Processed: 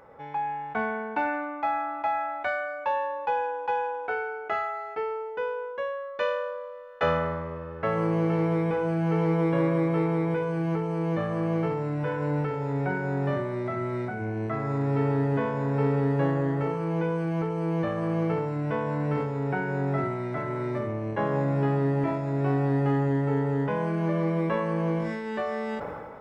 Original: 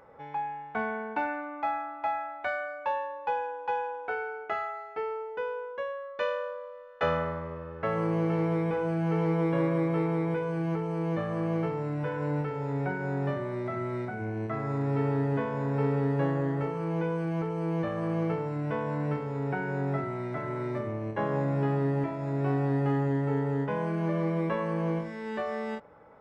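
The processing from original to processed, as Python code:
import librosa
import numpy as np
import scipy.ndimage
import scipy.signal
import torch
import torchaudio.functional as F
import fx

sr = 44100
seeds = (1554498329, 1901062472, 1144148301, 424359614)

y = fx.sustainer(x, sr, db_per_s=32.0)
y = y * librosa.db_to_amplitude(2.5)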